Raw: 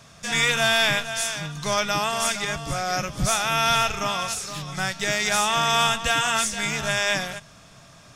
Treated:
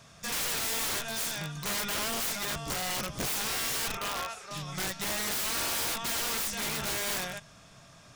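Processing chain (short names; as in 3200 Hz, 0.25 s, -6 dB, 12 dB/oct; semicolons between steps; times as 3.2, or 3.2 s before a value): 3.97–4.51 three-band isolator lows -14 dB, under 370 Hz, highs -15 dB, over 2800 Hz; wrapped overs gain 21.5 dB; gain -5 dB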